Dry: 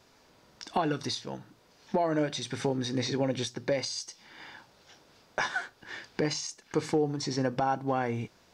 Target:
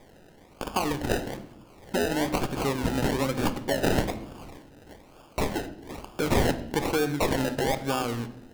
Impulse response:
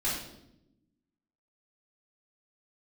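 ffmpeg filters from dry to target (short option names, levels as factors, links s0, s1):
-filter_complex "[0:a]aexciter=amount=3.5:drive=9.1:freq=4900,acrusher=samples=31:mix=1:aa=0.000001:lfo=1:lforange=18.6:lforate=1.1,asplit=2[s0][s1];[1:a]atrim=start_sample=2205,highshelf=f=8400:g=-12[s2];[s1][s2]afir=irnorm=-1:irlink=0,volume=0.168[s3];[s0][s3]amix=inputs=2:normalize=0"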